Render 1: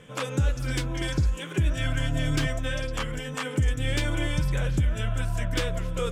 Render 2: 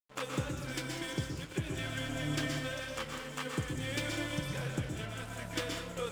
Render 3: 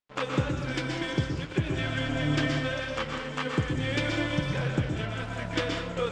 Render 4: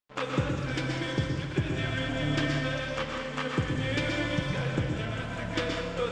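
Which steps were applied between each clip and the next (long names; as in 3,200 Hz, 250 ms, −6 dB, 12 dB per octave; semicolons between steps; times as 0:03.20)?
high-pass filter 140 Hz 12 dB per octave; dead-zone distortion −40 dBFS; convolution reverb RT60 0.50 s, pre-delay 113 ms, DRR 2.5 dB; level −5.5 dB
high-frequency loss of the air 130 metres; level +8.5 dB
four-comb reverb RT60 3 s, DRR 7 dB; level −1.5 dB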